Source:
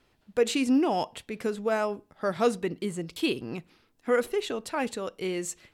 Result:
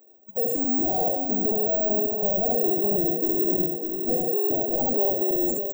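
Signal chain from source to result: Wiener smoothing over 41 samples; on a send: early reflections 12 ms -13.5 dB, 69 ms -4 dB; on the sum: spectral noise reduction 16 dB; bell 110 Hz -14 dB 1.2 oct; notches 60/120/180/240/300/360/420/480/540 Hz; in parallel at -0.5 dB: compressor, threshold -35 dBFS, peak gain reduction 14 dB; on the sum: overdrive pedal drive 38 dB, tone 3800 Hz, clips at -12 dBFS; soft clip -17.5 dBFS, distortion -20 dB; FFT band-reject 830–6700 Hz; split-band echo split 610 Hz, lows 0.605 s, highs 0.209 s, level -5 dB; careless resampling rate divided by 2×, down none, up zero stuff; mismatched tape noise reduction encoder only; gain -5.5 dB

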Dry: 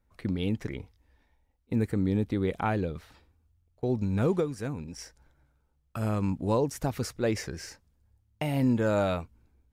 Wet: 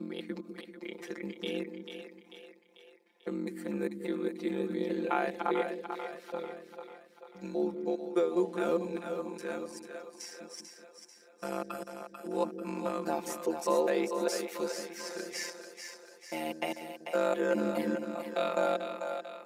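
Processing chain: slices in reverse order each 0.102 s, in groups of 4; HPF 290 Hz 24 dB/oct; split-band echo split 440 Hz, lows 95 ms, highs 0.221 s, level -7 dB; granular stretch 2×, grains 23 ms

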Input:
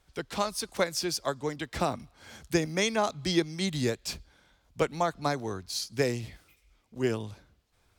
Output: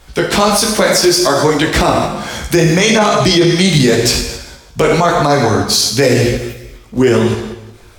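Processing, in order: Schroeder reverb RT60 0.99 s, combs from 25 ms, DRR 5 dB; in parallel at -0.5 dB: level quantiser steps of 10 dB; on the sum: chorus voices 4, 1.2 Hz, delay 17 ms, depth 3 ms; maximiser +23.5 dB; gain -1 dB

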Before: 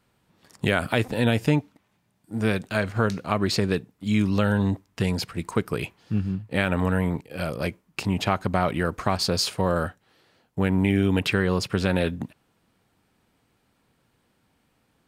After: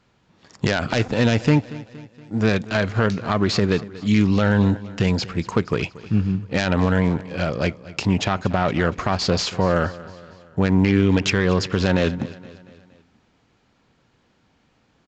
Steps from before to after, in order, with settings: self-modulated delay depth 0.19 ms; short-mantissa float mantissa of 6-bit; on a send: feedback echo 0.234 s, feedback 52%, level -19 dB; on the sum: downsampling 16000 Hz; maximiser +11 dB; gain -5.5 dB

